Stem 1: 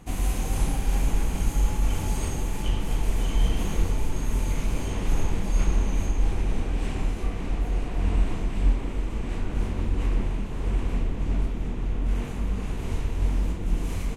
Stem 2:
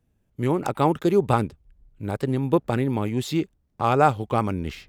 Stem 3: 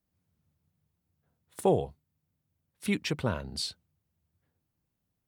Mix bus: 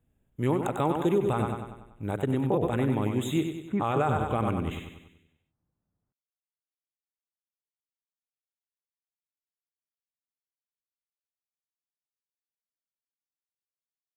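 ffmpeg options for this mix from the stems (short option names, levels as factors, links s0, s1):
-filter_complex "[1:a]volume=0.708,asplit=2[s0][s1];[s1]volume=0.422[s2];[2:a]lowpass=f=1500:w=0.5412,lowpass=f=1500:w=1.3066,adelay=850,volume=1.06[s3];[s2]aecho=0:1:96|192|288|384|480|576|672:1|0.51|0.26|0.133|0.0677|0.0345|0.0176[s4];[s0][s3][s4]amix=inputs=3:normalize=0,asuperstop=centerf=5000:order=20:qfactor=2,alimiter=limit=0.158:level=0:latency=1:release=67"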